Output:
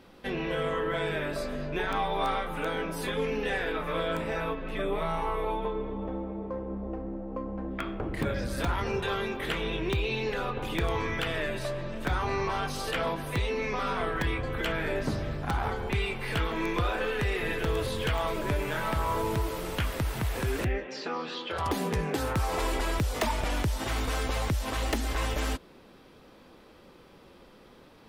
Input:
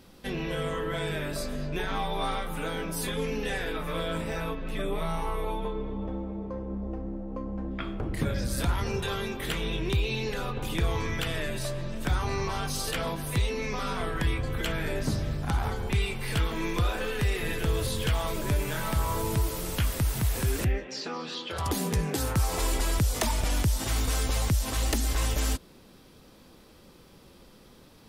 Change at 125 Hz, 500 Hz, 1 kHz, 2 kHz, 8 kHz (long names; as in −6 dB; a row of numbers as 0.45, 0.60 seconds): −3.5, +2.5, +2.5, +2.0, −8.0 decibels